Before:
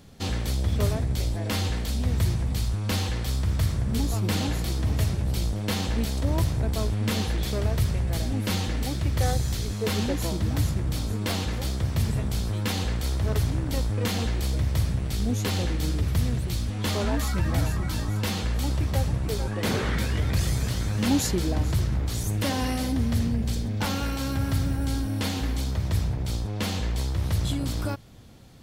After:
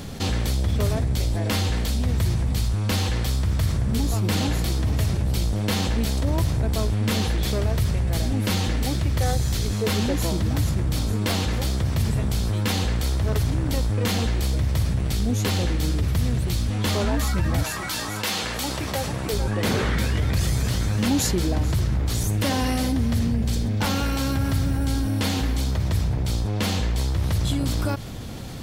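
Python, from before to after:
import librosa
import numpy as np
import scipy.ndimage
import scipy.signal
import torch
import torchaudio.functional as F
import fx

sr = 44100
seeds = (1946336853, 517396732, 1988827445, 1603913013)

y = fx.highpass(x, sr, hz=fx.line((17.62, 1300.0), (19.32, 340.0)), slope=6, at=(17.62, 19.32), fade=0.02)
y = fx.env_flatten(y, sr, amount_pct=50)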